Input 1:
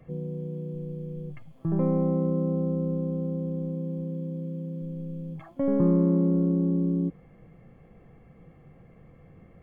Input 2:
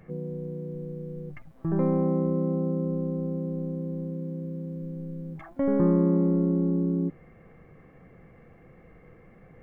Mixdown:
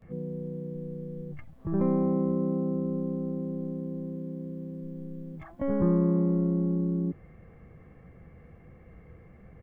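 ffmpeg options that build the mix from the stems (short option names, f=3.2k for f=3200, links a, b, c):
-filter_complex "[0:a]aecho=1:1:4.6:0.98,volume=-14dB[a];[1:a]adelay=21,volume=-3dB[b];[a][b]amix=inputs=2:normalize=0,equalizer=f=71:t=o:w=1.4:g=11.5"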